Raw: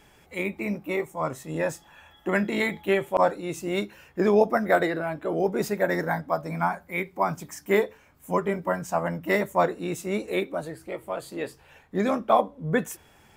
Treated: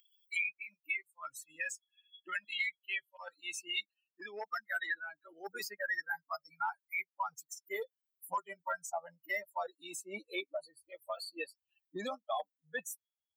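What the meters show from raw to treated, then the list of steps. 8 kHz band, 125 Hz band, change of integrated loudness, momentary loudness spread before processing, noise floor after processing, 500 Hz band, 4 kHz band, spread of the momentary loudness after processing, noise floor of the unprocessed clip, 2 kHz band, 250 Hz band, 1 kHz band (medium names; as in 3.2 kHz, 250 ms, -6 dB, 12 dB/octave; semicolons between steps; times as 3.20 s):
-4.5 dB, under -30 dB, -13.0 dB, 12 LU, under -85 dBFS, -20.0 dB, -3.0 dB, 12 LU, -57 dBFS, -6.0 dB, -26.0 dB, -13.5 dB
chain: expander on every frequency bin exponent 3; reverse; compression 16:1, threshold -40 dBFS, peak gain reduction 23 dB; reverse; high-pass sweep 2.5 kHz -> 760 Hz, 3.67–7.60 s; three bands compressed up and down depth 100%; trim +6 dB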